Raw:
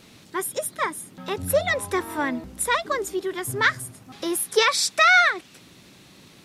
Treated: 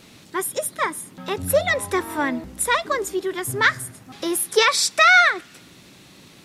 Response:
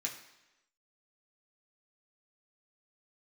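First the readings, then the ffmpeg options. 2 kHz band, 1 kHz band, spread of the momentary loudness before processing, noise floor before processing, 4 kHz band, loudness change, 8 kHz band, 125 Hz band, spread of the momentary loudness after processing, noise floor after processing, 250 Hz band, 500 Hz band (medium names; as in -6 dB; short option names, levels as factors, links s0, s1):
+2.5 dB, +2.5 dB, 16 LU, -51 dBFS, +2.5 dB, +2.5 dB, +3.0 dB, +2.0 dB, 16 LU, -49 dBFS, +2.5 dB, +2.0 dB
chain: -filter_complex "[0:a]asplit=2[s0][s1];[1:a]atrim=start_sample=2205[s2];[s1][s2]afir=irnorm=-1:irlink=0,volume=0.0944[s3];[s0][s3]amix=inputs=2:normalize=0,volume=1.26"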